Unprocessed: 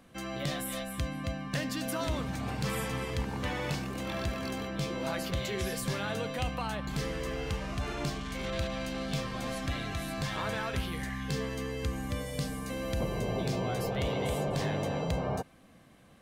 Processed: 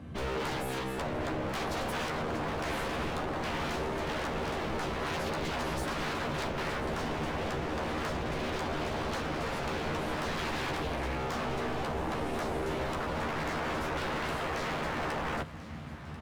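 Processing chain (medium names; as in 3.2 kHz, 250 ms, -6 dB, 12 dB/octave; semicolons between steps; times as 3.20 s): high-pass 57 Hz 24 dB/octave; RIAA curve playback; band-stop 520 Hz, Q 12; in parallel at -1 dB: compression, threshold -29 dBFS, peak gain reduction 13 dB; on the sum: wavefolder -30 dBFS; doubling 13 ms -5 dB; on a send: thinning echo 1040 ms, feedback 66%, high-pass 510 Hz, level -16 dB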